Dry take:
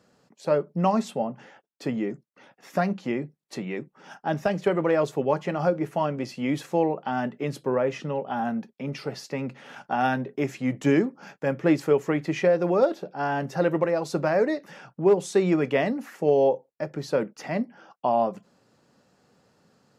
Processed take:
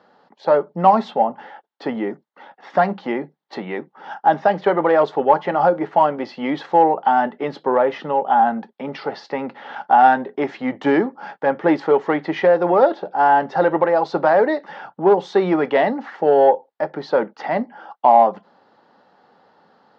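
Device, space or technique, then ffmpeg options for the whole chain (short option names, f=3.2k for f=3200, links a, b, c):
overdrive pedal into a guitar cabinet: -filter_complex "[0:a]asplit=2[a][b];[b]highpass=f=720:p=1,volume=10dB,asoftclip=type=tanh:threshold=-10dB[c];[a][c]amix=inputs=2:normalize=0,lowpass=f=4k:p=1,volume=-6dB,highpass=99,equalizer=f=130:t=q:w=4:g=-10,equalizer=f=840:t=q:w=4:g=9,equalizer=f=2.5k:t=q:w=4:g=-10,lowpass=f=4k:w=0.5412,lowpass=f=4k:w=1.3066,volume=5dB"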